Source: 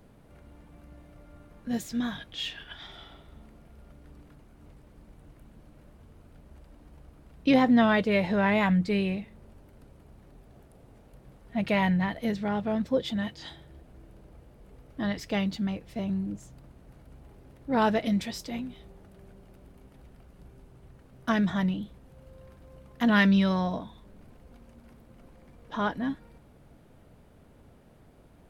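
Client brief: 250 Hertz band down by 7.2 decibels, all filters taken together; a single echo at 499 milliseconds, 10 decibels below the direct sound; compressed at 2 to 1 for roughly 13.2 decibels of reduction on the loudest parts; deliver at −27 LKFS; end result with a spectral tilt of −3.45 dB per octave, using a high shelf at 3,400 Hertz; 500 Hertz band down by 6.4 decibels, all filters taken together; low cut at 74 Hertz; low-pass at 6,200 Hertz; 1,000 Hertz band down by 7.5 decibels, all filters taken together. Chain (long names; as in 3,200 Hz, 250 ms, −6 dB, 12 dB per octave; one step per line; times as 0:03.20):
high-pass filter 74 Hz
low-pass filter 6,200 Hz
parametric band 250 Hz −8.5 dB
parametric band 500 Hz −3.5 dB
parametric band 1,000 Hz −8.5 dB
high-shelf EQ 3,400 Hz +6.5 dB
downward compressor 2 to 1, threshold −45 dBFS
single-tap delay 499 ms −10 dB
level +15.5 dB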